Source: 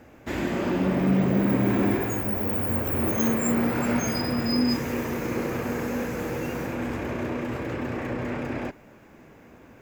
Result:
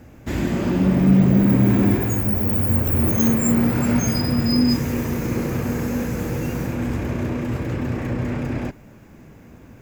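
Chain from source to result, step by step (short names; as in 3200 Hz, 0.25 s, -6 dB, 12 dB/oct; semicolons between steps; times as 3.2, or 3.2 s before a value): tone controls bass +11 dB, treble +6 dB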